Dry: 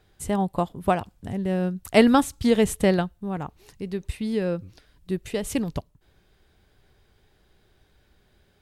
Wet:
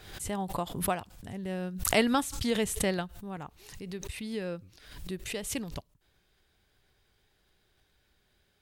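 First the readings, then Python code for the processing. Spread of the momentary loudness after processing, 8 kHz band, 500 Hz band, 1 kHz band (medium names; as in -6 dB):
16 LU, +1.5 dB, -9.5 dB, -7.5 dB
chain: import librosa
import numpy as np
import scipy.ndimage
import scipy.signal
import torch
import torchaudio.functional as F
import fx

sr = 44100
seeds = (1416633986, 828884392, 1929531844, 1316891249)

y = fx.tilt_shelf(x, sr, db=-4.0, hz=1200.0)
y = fx.pre_swell(y, sr, db_per_s=72.0)
y = y * 10.0 ** (-7.0 / 20.0)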